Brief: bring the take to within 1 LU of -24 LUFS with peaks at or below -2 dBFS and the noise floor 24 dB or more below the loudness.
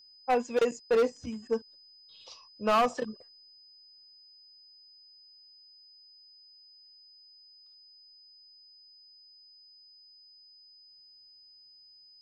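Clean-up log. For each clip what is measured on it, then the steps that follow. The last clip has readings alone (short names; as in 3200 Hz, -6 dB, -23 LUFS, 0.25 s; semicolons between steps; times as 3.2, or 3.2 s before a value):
clipped 0.8%; flat tops at -20.0 dBFS; steady tone 5000 Hz; tone level -54 dBFS; loudness -29.5 LUFS; peak -20.0 dBFS; loudness target -24.0 LUFS
-> clip repair -20 dBFS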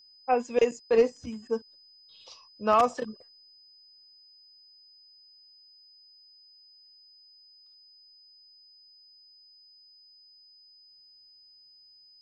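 clipped 0.0%; steady tone 5000 Hz; tone level -54 dBFS
-> notch 5000 Hz, Q 30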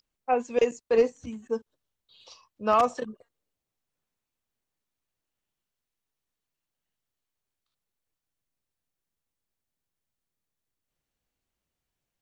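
steady tone none; loudness -26.5 LUFS; peak -11.0 dBFS; loudness target -24.0 LUFS
-> gain +2.5 dB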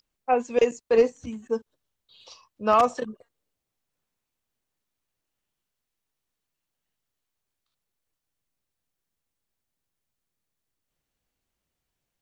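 loudness -24.0 LUFS; peak -8.5 dBFS; noise floor -84 dBFS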